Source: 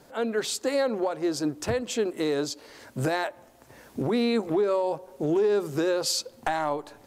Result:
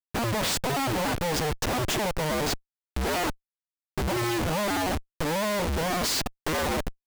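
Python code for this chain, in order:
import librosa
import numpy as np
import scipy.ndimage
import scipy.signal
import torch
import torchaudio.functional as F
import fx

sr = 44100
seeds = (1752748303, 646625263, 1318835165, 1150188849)

y = fx.cycle_switch(x, sr, every=2, mode='inverted')
y = fx.schmitt(y, sr, flips_db=-35.0)
y = y * 10.0 ** (1.0 / 20.0)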